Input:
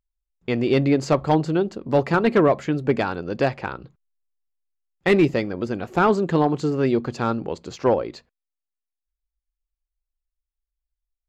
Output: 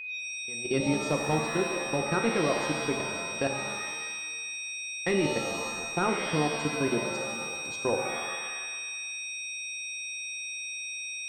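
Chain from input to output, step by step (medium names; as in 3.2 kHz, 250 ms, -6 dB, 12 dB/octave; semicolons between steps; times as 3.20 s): level held to a coarse grid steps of 20 dB; whistle 2.5 kHz -30 dBFS; pitch-shifted reverb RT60 1.3 s, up +7 st, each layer -2 dB, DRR 4 dB; trim -7 dB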